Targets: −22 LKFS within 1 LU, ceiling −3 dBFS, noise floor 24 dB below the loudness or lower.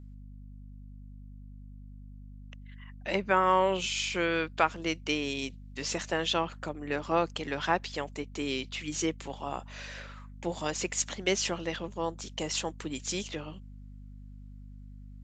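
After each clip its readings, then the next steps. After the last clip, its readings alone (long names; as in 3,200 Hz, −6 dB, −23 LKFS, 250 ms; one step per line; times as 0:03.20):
mains hum 50 Hz; hum harmonics up to 250 Hz; level of the hum −44 dBFS; integrated loudness −31.5 LKFS; sample peak −9.0 dBFS; target loudness −22.0 LKFS
→ mains-hum notches 50/100/150/200/250 Hz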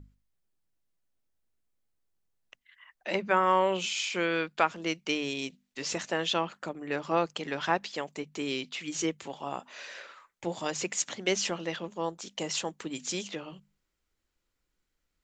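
mains hum none found; integrated loudness −31.5 LKFS; sample peak −9.0 dBFS; target loudness −22.0 LKFS
→ level +9.5 dB
brickwall limiter −3 dBFS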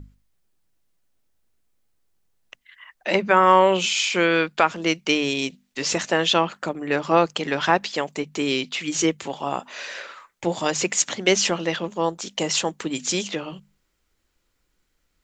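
integrated loudness −22.0 LKFS; sample peak −3.0 dBFS; background noise floor −72 dBFS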